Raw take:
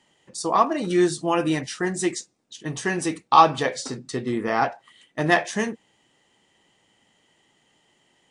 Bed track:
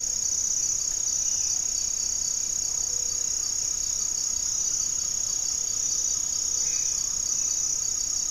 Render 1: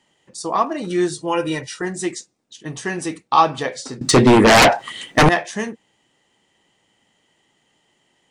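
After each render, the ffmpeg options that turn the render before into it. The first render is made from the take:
-filter_complex "[0:a]asettb=1/sr,asplit=3[a][b][c];[a]atrim=end=1.134[d];[b]atrim=start=1.13:end=1.82,asetpts=PTS-STARTPTS,afade=t=in:d=0.004:c=qsin,afade=t=out:st=0.686:d=0.004:c=qsin,aecho=1:1:2.1:0.65,atrim=end_sample=30429[e];[c]atrim=start=1.816[f];[d][e]acrossfade=d=0.004:c1=hsin:c2=qsin[g];[g][f]acrossfade=d=0.004:c1=qsin:c2=hsin,asettb=1/sr,asplit=3[h][i][j];[h]atrim=end=4.014[k];[i]atrim=start=4.01:end=5.29,asetpts=PTS-STARTPTS,afade=t=in:d=0.004:c=qsin,afade=t=out:st=1.276:d=0.004:c=qsin,aeval=exprs='0.473*sin(PI/2*7.08*val(0)/0.473)':c=same[l];[j]atrim=start=5.286[m];[k][l]acrossfade=d=0.004:c1=hsin:c2=qsin[n];[n][m]acrossfade=d=0.004:c1=qsin:c2=hsin"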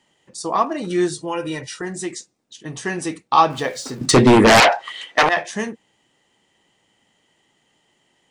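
-filter_complex "[0:a]asettb=1/sr,asplit=3[a][b][c];[a]atrim=end=1.244[d];[b]atrim=start=1.24:end=2.85,asetpts=PTS-STARTPTS,afade=t=in:d=0.004:c=qsin,afade=t=out:st=1.606:d=0.004:c=qsin,acompressor=threshold=-28dB:ratio=1.5:attack=3.2:release=140:knee=1:detection=peak[e];[c]atrim=start=2.846[f];[d][e]acrossfade=d=0.004:c1=hsin:c2=qsin[g];[g][f]acrossfade=d=0.004:c1=qsin:c2=hsin,asettb=1/sr,asplit=3[h][i][j];[h]atrim=end=3.504[k];[i]atrim=start=3.5:end=4.06,asetpts=PTS-STARTPTS,afade=t=in:d=0.004:c=qsin,afade=t=out:st=0.556:d=0.004:c=qsin,aeval=exprs='val(0)+0.5*0.0112*sgn(val(0))':c=same[l];[j]atrim=start=4.056[m];[k][l]acrossfade=d=0.004:c1=hsin:c2=qsin[n];[n][m]acrossfade=d=0.004:c1=qsin:c2=hsin,asettb=1/sr,asplit=3[o][p][q];[o]atrim=end=4.604[r];[p]atrim=start=4.6:end=5.37,asetpts=PTS-STARTPTS,afade=t=in:d=0.004:c=qsin,afade=t=out:st=0.766:d=0.004:c=qsin,acrossover=split=450 6200:gain=0.1 1 0.2[s][t][u];[s][t][u]amix=inputs=3:normalize=0[v];[q]atrim=start=5.366[w];[r][v]acrossfade=d=0.004:c1=hsin:c2=qsin[x];[x][w]acrossfade=d=0.004:c1=qsin:c2=hsin"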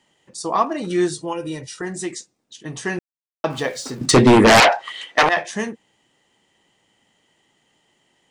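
-filter_complex "[0:a]asettb=1/sr,asplit=3[a][b][c];[a]atrim=end=1.334[d];[b]atrim=start=1.33:end=1.78,asetpts=PTS-STARTPTS,afade=t=in:d=0.004:c=qsin,afade=t=out:st=0.446:d=0.004:c=qsin,equalizer=f=1.5k:w=0.58:g=-9[e];[c]atrim=start=1.776[f];[d][e]acrossfade=d=0.004:c1=hsin:c2=qsin[g];[g][f]acrossfade=d=0.004:c1=qsin:c2=hsin,asplit=3[h][i][j];[h]atrim=end=2.99,asetpts=PTS-STARTPTS,afade=t=out:st=2.986:d=0.004:c=hsin[k];[i]atrim=start=2.99:end=3.44,asetpts=PTS-STARTPTS,volume=0[l];[j]atrim=start=3.44,asetpts=PTS-STARTPTS,afade=t=in:d=0.004:c=hsin[m];[k][l][m]concat=n=3:v=0:a=1"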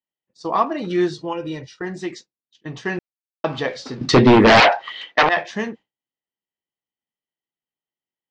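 -af "lowpass=f=4.9k:w=0.5412,lowpass=f=4.9k:w=1.3066,agate=range=-33dB:threshold=-33dB:ratio=3:detection=peak"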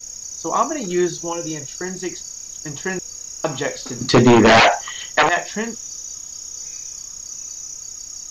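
-filter_complex "[1:a]volume=-6.5dB[a];[0:a][a]amix=inputs=2:normalize=0"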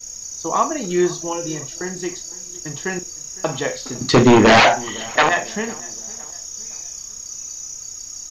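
-filter_complex "[0:a]asplit=2[a][b];[b]adelay=45,volume=-12dB[c];[a][c]amix=inputs=2:normalize=0,asplit=2[d][e];[e]adelay=508,lowpass=f=2.1k:p=1,volume=-21.5dB,asplit=2[f][g];[g]adelay=508,lowpass=f=2.1k:p=1,volume=0.47,asplit=2[h][i];[i]adelay=508,lowpass=f=2.1k:p=1,volume=0.47[j];[d][f][h][j]amix=inputs=4:normalize=0"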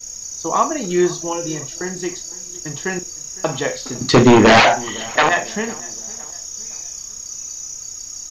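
-af "volume=1.5dB,alimiter=limit=-3dB:level=0:latency=1"

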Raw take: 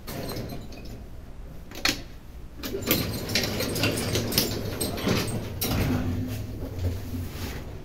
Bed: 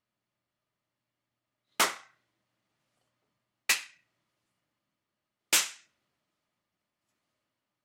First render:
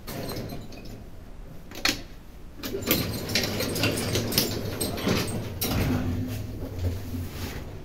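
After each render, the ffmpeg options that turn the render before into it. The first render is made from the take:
-af "bandreject=f=60:t=h:w=4,bandreject=f=120:t=h:w=4"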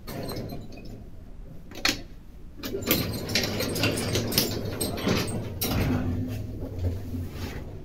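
-af "afftdn=nr=7:nf=-43"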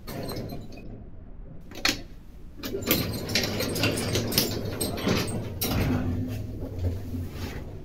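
-filter_complex "[0:a]asettb=1/sr,asplit=3[a][b][c];[a]atrim=end=0.834[d];[b]atrim=start=0.83:end=1.61,asetpts=PTS-STARTPTS,afade=t=in:d=0.004:c=qsin,afade=t=out:st=0.776:d=0.004:c=qsin,lowpass=2k[e];[c]atrim=start=1.606[f];[d][e]acrossfade=d=0.004:c1=hsin:c2=qsin[g];[g][f]acrossfade=d=0.004:c1=qsin:c2=hsin"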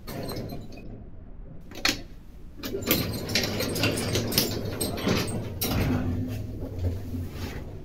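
-af anull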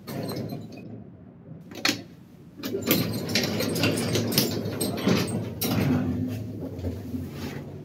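-af "highpass=f=120:w=0.5412,highpass=f=120:w=1.3066,lowshelf=f=280:g=6.5"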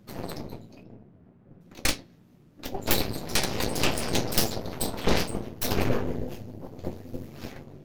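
-af "aeval=exprs='0.596*(cos(1*acos(clip(val(0)/0.596,-1,1)))-cos(1*PI/2))+0.0841*(cos(3*acos(clip(val(0)/0.596,-1,1)))-cos(3*PI/2))+0.188*(cos(8*acos(clip(val(0)/0.596,-1,1)))-cos(8*PI/2))':c=same,flanger=delay=8.5:depth=9.2:regen=-52:speed=0.68:shape=triangular"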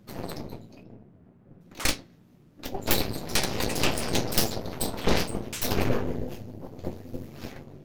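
-filter_complex "[1:a]volume=-13dB[a];[0:a][a]amix=inputs=2:normalize=0"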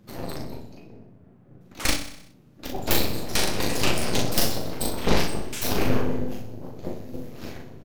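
-filter_complex "[0:a]asplit=2[a][b];[b]adelay=39,volume=-3dB[c];[a][c]amix=inputs=2:normalize=0,asplit=2[d][e];[e]aecho=0:1:63|126|189|252|315|378:0.282|0.161|0.0916|0.0522|0.0298|0.017[f];[d][f]amix=inputs=2:normalize=0"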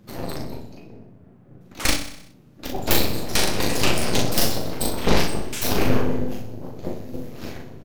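-af "volume=3dB,alimiter=limit=-3dB:level=0:latency=1"

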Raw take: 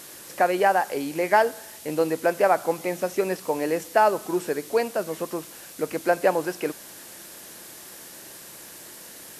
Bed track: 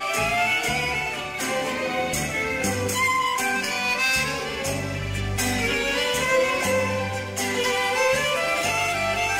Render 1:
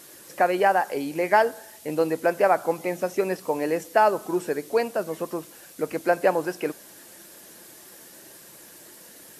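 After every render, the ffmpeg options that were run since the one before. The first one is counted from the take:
-af "afftdn=nr=6:nf=-44"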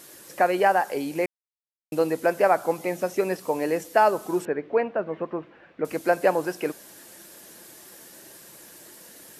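-filter_complex "[0:a]asettb=1/sr,asplit=3[a][b][c];[a]atrim=end=4.454[d];[b]atrim=start=4.45:end=5.85,asetpts=PTS-STARTPTS,afade=t=in:d=0.004:c=qsin,afade=t=out:st=1.396:d=0.004:c=qsin,lowpass=f=2.5k:w=0.5412,lowpass=f=2.5k:w=1.3066[e];[c]atrim=start=5.846[f];[d][e]acrossfade=d=0.004:c1=hsin:c2=qsin[g];[g][f]acrossfade=d=0.004:c1=qsin:c2=hsin,asplit=3[h][i][j];[h]atrim=end=1.26,asetpts=PTS-STARTPTS,afade=t=out:st=1.256:d=0.004:c=hsin[k];[i]atrim=start=1.26:end=1.92,asetpts=PTS-STARTPTS,volume=0[l];[j]atrim=start=1.92,asetpts=PTS-STARTPTS,afade=t=in:d=0.004:c=hsin[m];[k][l][m]concat=n=3:v=0:a=1"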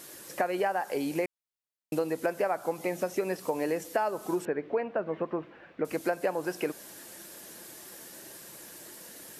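-af "acompressor=threshold=-26dB:ratio=5"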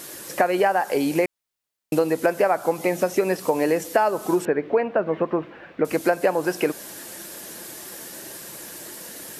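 -af "volume=9dB"

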